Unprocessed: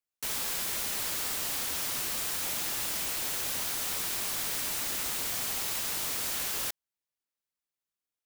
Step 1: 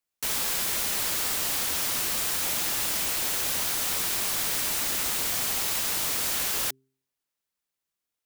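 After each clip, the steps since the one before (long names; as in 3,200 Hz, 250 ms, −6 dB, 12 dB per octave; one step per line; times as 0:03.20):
hum removal 132.4 Hz, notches 3
level +5 dB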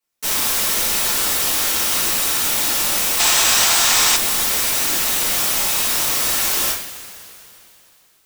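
coupled-rooms reverb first 0.45 s, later 3.1 s, from −18 dB, DRR −10 dB
gain on a spectral selection 0:03.20–0:04.16, 630–8,600 Hz +7 dB
level −1.5 dB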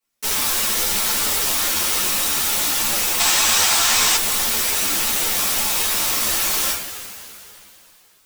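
in parallel at −2 dB: downward compressor, threshold −25 dBFS, peak gain reduction 12.5 dB
on the sum: string-ensemble chorus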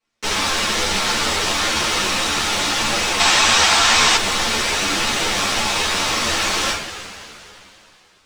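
high-frequency loss of the air 110 metres
level +7 dB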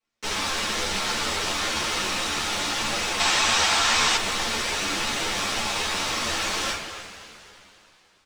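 far-end echo of a speakerphone 270 ms, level −12 dB
level −7 dB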